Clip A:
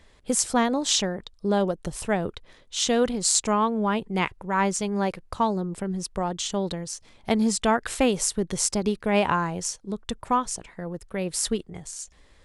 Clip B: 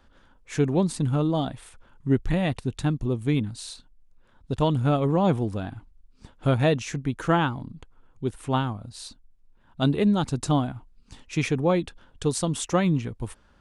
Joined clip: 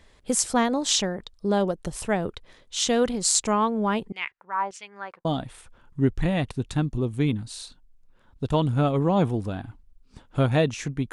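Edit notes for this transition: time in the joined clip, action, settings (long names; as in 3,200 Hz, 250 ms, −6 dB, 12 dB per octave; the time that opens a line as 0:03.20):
clip A
0:04.12–0:05.25: auto-filter band-pass saw down 1.7 Hz 780–3,100 Hz
0:05.25: continue with clip B from 0:01.33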